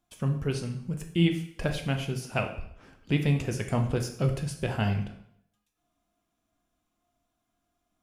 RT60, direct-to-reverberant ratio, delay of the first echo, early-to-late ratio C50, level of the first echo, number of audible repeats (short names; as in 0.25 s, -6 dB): 0.70 s, 4.5 dB, none, 9.0 dB, none, none